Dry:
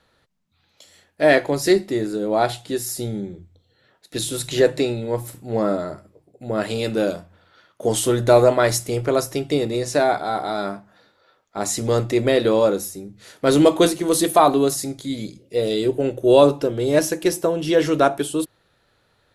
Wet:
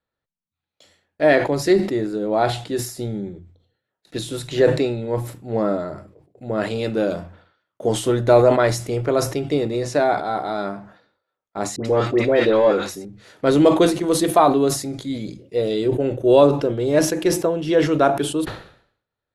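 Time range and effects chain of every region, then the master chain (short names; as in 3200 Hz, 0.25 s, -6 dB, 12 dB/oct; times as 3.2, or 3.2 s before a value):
11.76–13.05 overdrive pedal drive 12 dB, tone 2300 Hz, clips at -6 dBFS + dispersion highs, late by 90 ms, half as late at 1200 Hz
whole clip: LPF 2800 Hz 6 dB/oct; gate with hold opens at -43 dBFS; sustainer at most 100 dB/s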